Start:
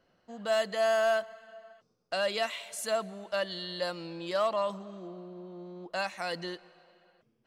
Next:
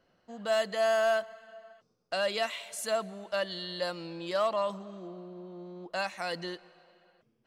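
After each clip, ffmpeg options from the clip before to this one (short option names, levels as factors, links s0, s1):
-af anull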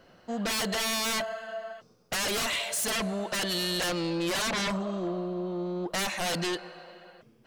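-af "aeval=exprs='0.112*sin(PI/2*6.31*val(0)/0.112)':c=same,volume=0.447"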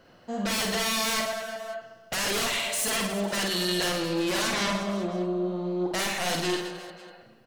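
-af "aecho=1:1:50|120|218|355.2|547.3:0.631|0.398|0.251|0.158|0.1"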